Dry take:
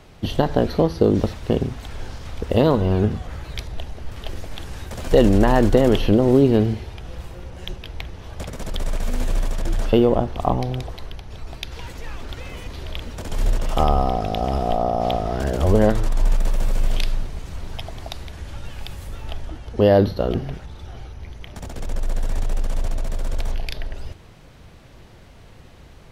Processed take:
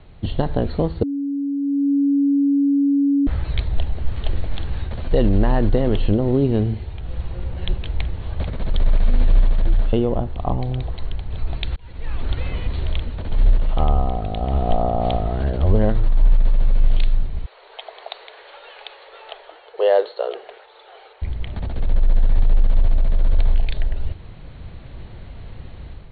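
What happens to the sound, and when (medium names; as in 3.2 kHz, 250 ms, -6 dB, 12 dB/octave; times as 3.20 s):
1.03–3.27 s: bleep 281 Hz -18.5 dBFS
11.76–12.28 s: fade in
17.46–21.22 s: elliptic high-pass 440 Hz, stop band 50 dB
whole clip: Chebyshev low-pass 4.4 kHz, order 10; bass shelf 150 Hz +11 dB; level rider gain up to 7 dB; trim -4 dB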